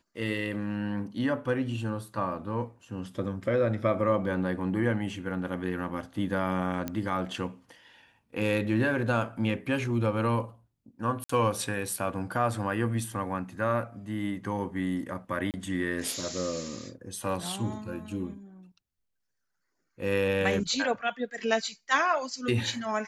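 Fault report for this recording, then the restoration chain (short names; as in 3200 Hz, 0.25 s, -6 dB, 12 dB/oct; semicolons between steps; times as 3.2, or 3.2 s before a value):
6.88 pop -17 dBFS
11.24–11.29 gap 54 ms
15.51–15.54 gap 28 ms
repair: de-click; interpolate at 11.24, 54 ms; interpolate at 15.51, 28 ms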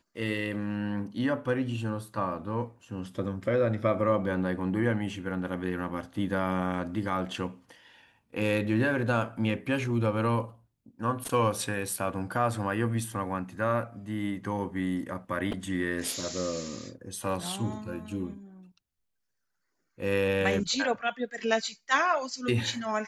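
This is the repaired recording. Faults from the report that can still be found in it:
none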